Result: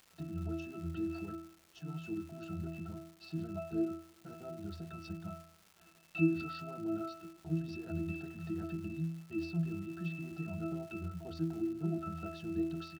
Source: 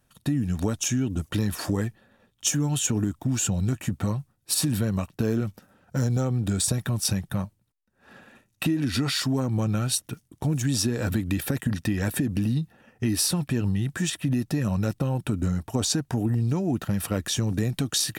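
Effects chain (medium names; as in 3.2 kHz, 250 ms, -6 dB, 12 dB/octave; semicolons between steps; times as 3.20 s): tremolo 3.8 Hz, depth 29%; peaking EQ 92 Hz -12.5 dB 1.5 oct; in parallel at -7.5 dB: companded quantiser 4-bit; on the sum: hum notches 60/120/180/240/300/360/420/480/540 Hz; tempo 1.4×; resonant low-pass 4.5 kHz, resonance Q 4.6; pitch-class resonator E, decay 0.63 s; crackle 490 per s -58 dBFS; on a send at -23 dB: reverberation RT60 1.6 s, pre-delay 63 ms; on the sum: trim +8 dB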